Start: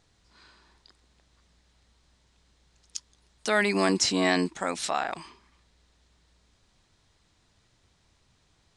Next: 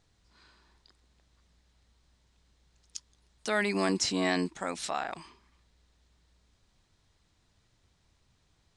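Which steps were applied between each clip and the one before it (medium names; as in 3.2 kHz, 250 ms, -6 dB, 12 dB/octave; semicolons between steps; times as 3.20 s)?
bass shelf 160 Hz +4 dB; trim -5 dB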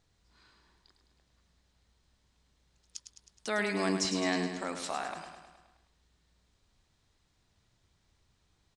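feedback delay 105 ms, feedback 58%, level -8 dB; trim -3 dB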